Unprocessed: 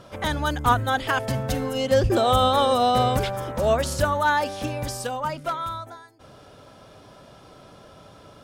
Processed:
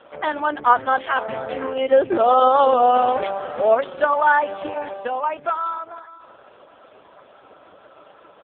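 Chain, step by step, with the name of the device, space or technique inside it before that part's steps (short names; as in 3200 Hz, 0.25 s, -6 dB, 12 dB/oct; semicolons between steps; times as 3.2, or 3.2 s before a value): 4–5.33 dynamic EQ 140 Hz, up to -5 dB, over -44 dBFS, Q 1.6; satellite phone (BPF 370–3100 Hz; echo 0.495 s -18 dB; gain +6 dB; AMR-NB 4.75 kbps 8000 Hz)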